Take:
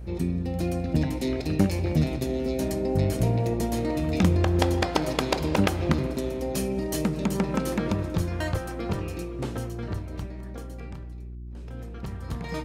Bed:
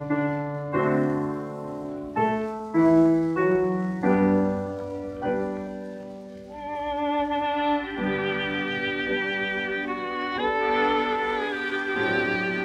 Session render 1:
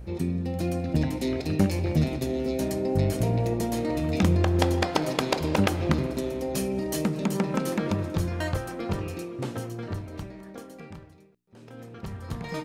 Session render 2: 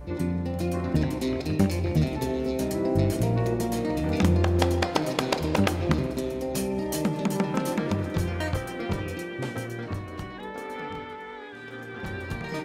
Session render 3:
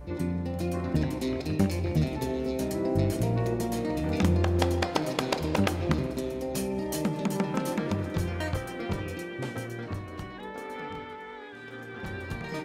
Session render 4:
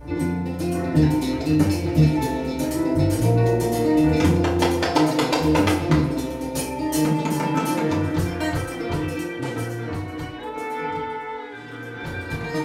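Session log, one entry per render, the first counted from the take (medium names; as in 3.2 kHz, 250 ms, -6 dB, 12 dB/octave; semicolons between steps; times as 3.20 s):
de-hum 60 Hz, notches 7
add bed -13.5 dB
trim -2.5 dB
FDN reverb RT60 0.47 s, low-frequency decay 0.75×, high-frequency decay 0.8×, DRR -7 dB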